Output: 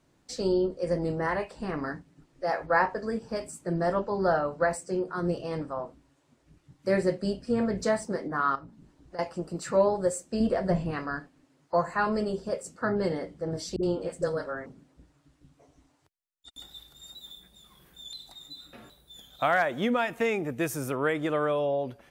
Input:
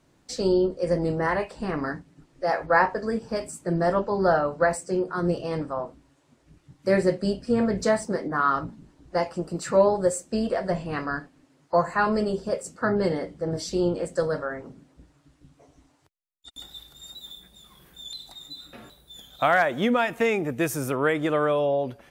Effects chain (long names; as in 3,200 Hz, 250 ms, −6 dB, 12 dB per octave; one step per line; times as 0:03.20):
0:08.55–0:09.19: downward compressor 6 to 1, threshold −38 dBFS, peak gain reduction 16.5 dB
0:10.40–0:10.91: low-shelf EQ 360 Hz +9 dB
0:13.76–0:14.66: all-pass dispersion highs, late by 69 ms, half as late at 350 Hz
level −4 dB